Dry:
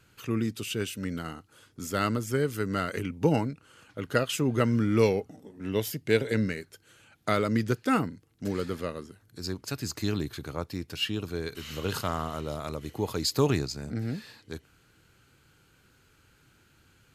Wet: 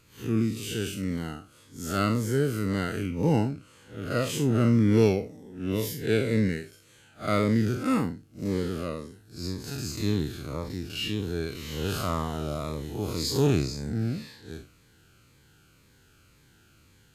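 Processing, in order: spectral blur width 120 ms; 1.97–2.68 s: word length cut 12-bit, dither none; Shepard-style phaser falling 1.9 Hz; trim +5 dB

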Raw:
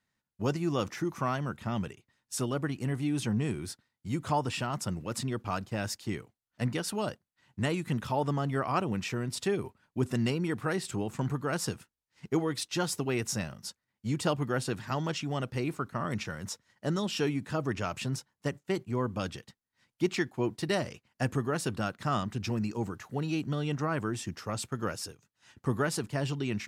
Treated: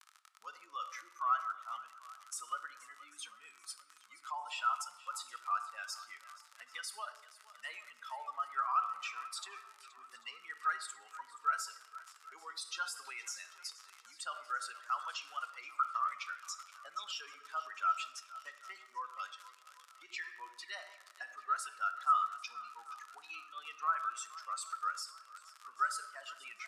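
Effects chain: expander on every frequency bin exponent 2; crackle 69 per s -46 dBFS; in parallel at +2.5 dB: compression, threshold -44 dBFS, peak gain reduction 18.5 dB; on the sum: low-pass 9.3 kHz 12 dB/octave; treble shelf 6 kHz +7.5 dB; on a send at -10.5 dB: reverberation RT60 0.95 s, pre-delay 5 ms; on the sum: peak limiter -28.5 dBFS, peak gain reduction 11.5 dB; ladder high-pass 1 kHz, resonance 50%; peaking EQ 1.3 kHz +9 dB 0.21 oct; shuffle delay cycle 791 ms, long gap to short 1.5:1, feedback 42%, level -18 dB; trim +6 dB; Vorbis 128 kbps 32 kHz

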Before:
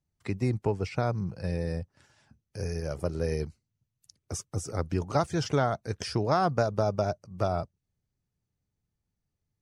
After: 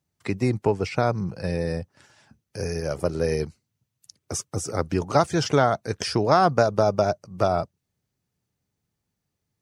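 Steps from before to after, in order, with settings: high-pass 170 Hz 6 dB/octave; trim +7.5 dB

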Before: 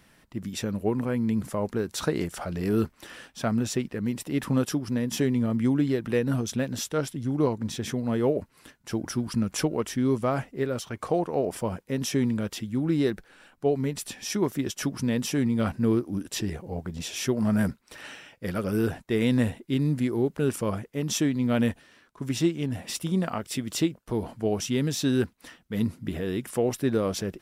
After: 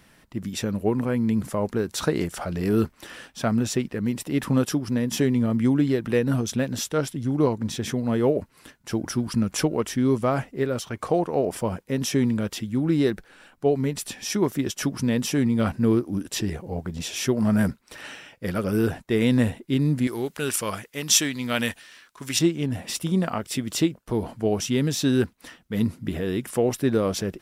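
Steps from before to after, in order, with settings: 20.07–22.39 s: tilt shelf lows -9 dB, about 930 Hz; trim +3 dB

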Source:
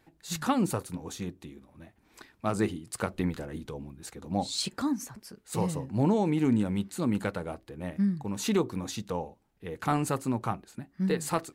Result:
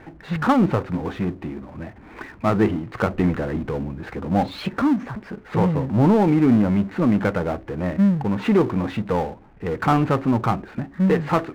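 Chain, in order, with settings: low-pass 2.2 kHz 24 dB/octave; power-law waveshaper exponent 0.7; trim +7 dB

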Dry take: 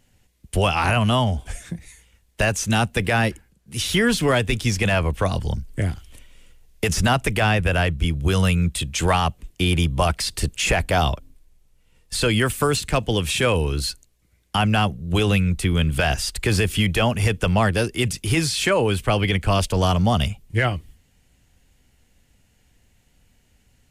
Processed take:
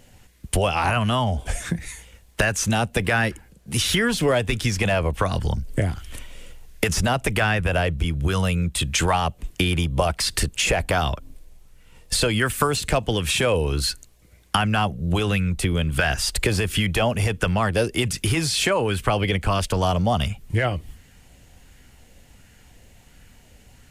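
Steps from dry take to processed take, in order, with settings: compression 6:1, threshold -29 dBFS, peak gain reduction 14 dB; sweeping bell 1.4 Hz 510–1700 Hz +6 dB; trim +9 dB

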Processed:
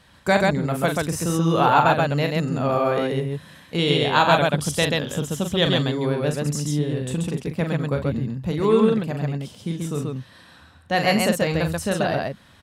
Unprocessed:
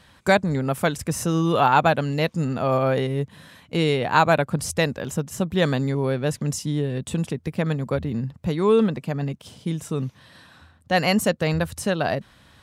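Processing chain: 3.78–6.01 s: peaking EQ 3.3 kHz +14 dB 0.28 oct; loudspeakers at several distances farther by 14 m -7 dB, 46 m -2 dB; trim -1.5 dB

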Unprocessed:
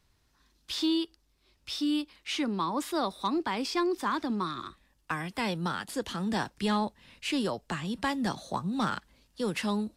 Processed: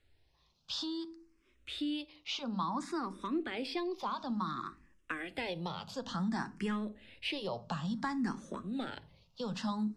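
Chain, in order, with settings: on a send at -14.5 dB: bass shelf 210 Hz +9 dB + reverberation RT60 0.35 s, pre-delay 4 ms; on the sum: compression 4:1, threshold -30 dBFS, peak gain reduction 7.5 dB; Bessel low-pass 5.6 kHz, order 2; hum notches 50/100 Hz; barber-pole phaser +0.57 Hz

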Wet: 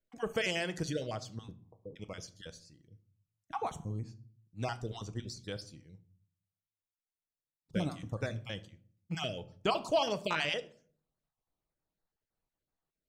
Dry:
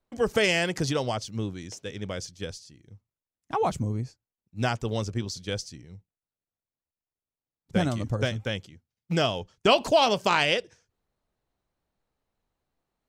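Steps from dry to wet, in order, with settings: random holes in the spectrogram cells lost 28%; 1.51–1.96 s: steep low-pass 1.1 kHz 96 dB/octave; reverberation RT60 0.50 s, pre-delay 6 ms, DRR 11 dB; trim -9 dB

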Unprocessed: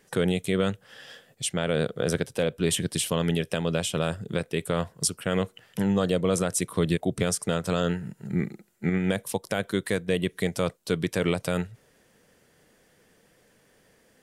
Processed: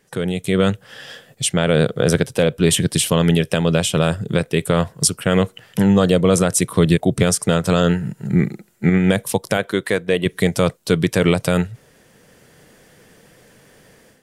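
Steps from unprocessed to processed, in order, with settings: peaking EQ 130 Hz +4 dB 0.77 oct; level rider gain up to 11.5 dB; 9.57–10.26 s: tone controls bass -9 dB, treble -6 dB

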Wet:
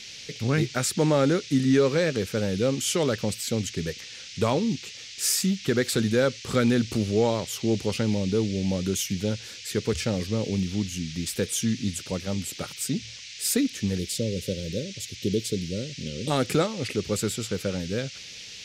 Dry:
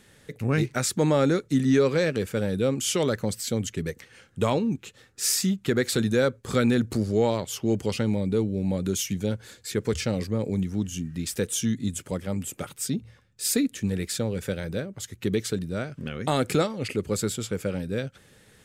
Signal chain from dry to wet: time-frequency box 13.99–16.31 s, 590–2700 Hz -21 dB; band noise 2.1–6.3 kHz -42 dBFS

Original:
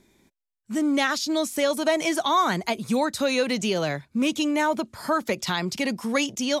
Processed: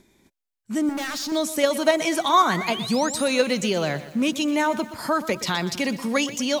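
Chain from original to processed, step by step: 0.89–1.32 s: overload inside the chain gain 30 dB; 2.26–3.28 s: painted sound rise 890–11000 Hz -36 dBFS; in parallel at -2 dB: level held to a coarse grid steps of 20 dB; on the sum: bit-crushed delay 122 ms, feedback 55%, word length 7-bit, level -14 dB

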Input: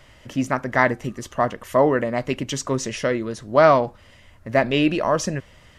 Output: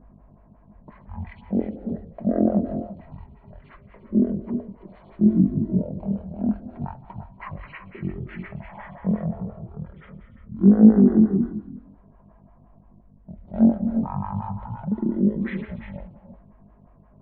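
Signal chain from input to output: wide varispeed 0.336×; peaking EQ 220 Hz +11.5 dB 0.67 oct; level-controlled noise filter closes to 1.3 kHz, open at -13.5 dBFS; hum 50 Hz, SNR 22 dB; gated-style reverb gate 370 ms rising, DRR 7.5 dB; lamp-driven phase shifter 5.7 Hz; trim -7 dB

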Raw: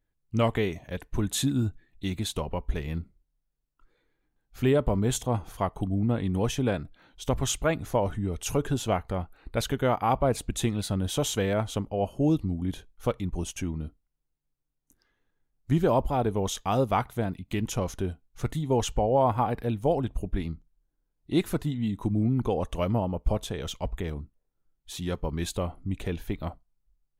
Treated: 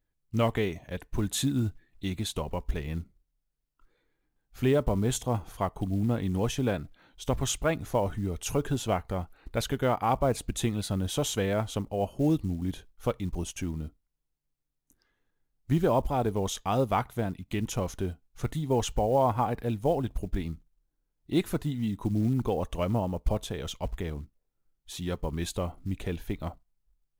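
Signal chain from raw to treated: short-mantissa float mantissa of 4-bit; trim -1.5 dB

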